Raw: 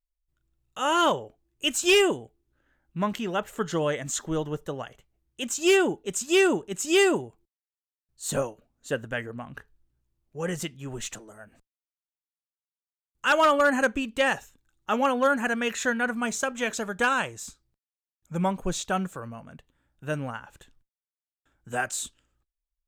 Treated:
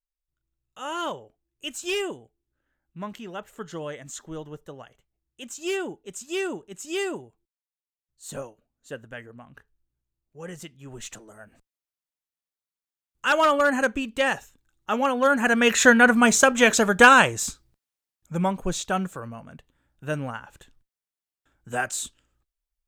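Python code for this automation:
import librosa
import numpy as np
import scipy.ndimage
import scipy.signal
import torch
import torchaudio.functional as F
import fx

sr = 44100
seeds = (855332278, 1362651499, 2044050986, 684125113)

y = fx.gain(x, sr, db=fx.line((10.67, -8.0), (11.37, 0.5), (15.16, 0.5), (15.8, 11.0), (17.45, 11.0), (18.45, 1.5)))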